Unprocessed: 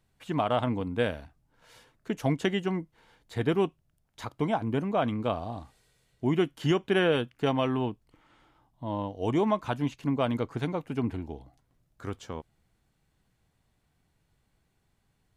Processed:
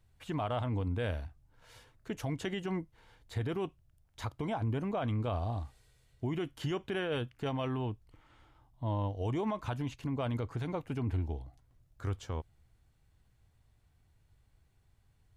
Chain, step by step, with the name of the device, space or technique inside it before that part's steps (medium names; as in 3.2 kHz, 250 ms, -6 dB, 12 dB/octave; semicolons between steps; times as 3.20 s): car stereo with a boomy subwoofer (resonant low shelf 130 Hz +8 dB, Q 1.5; peak limiter -24 dBFS, peak gain reduction 10 dB); trim -2 dB